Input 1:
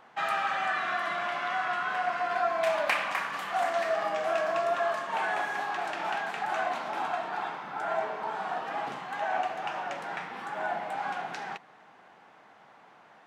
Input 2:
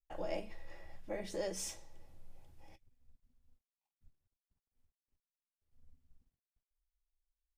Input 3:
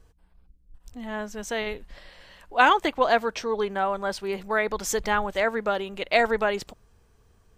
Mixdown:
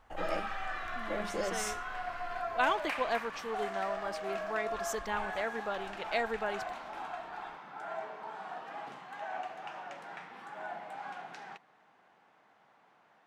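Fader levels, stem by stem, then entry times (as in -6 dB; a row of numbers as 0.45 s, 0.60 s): -9.5 dB, +3.0 dB, -11.5 dB; 0.00 s, 0.00 s, 0.00 s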